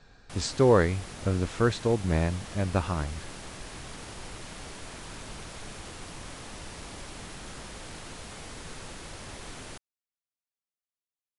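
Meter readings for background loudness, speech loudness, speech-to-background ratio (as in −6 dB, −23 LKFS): −42.0 LKFS, −27.5 LKFS, 14.5 dB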